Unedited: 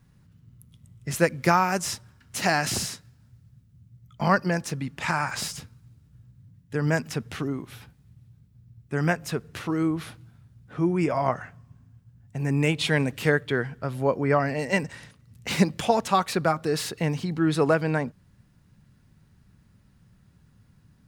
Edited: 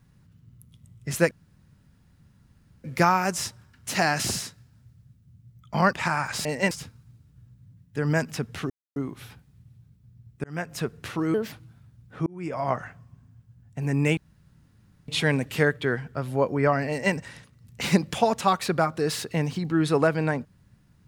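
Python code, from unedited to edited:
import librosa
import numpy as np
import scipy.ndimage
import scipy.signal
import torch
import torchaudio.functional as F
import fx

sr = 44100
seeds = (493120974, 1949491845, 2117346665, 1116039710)

y = fx.edit(x, sr, fx.insert_room_tone(at_s=1.31, length_s=1.53),
    fx.cut(start_s=4.4, length_s=0.56),
    fx.insert_silence(at_s=7.47, length_s=0.26),
    fx.fade_in_span(start_s=8.95, length_s=0.36),
    fx.speed_span(start_s=9.85, length_s=0.25, speed=1.37),
    fx.fade_in_span(start_s=10.84, length_s=0.52),
    fx.insert_room_tone(at_s=12.75, length_s=0.91),
    fx.duplicate(start_s=14.55, length_s=0.26, to_s=5.48), tone=tone)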